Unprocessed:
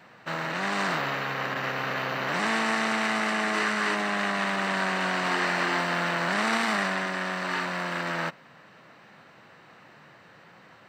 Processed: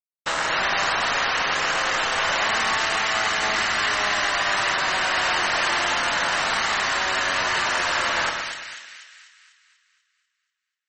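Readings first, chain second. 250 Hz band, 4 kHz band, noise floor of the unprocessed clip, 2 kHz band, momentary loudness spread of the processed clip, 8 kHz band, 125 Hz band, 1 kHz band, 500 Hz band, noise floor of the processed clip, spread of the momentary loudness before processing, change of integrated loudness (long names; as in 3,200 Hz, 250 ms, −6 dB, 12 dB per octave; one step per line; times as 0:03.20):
−7.5 dB, +10.0 dB, −53 dBFS, +5.5 dB, 3 LU, +11.0 dB, −5.5 dB, +5.0 dB, +2.0 dB, −82 dBFS, 5 LU, +5.5 dB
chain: high-pass filter 570 Hz 12 dB per octave
dynamic equaliser 3,100 Hz, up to +4 dB, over −51 dBFS, Q 5
downward compressor 8 to 1, threshold −34 dBFS, peak gain reduction 12 dB
steady tone 12,000 Hz −56 dBFS
log-companded quantiser 2 bits
on a send: echo with a time of its own for lows and highs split 1,700 Hz, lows 111 ms, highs 245 ms, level −4 dB
on the sum: level +5.5 dB
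MP3 32 kbit/s 48,000 Hz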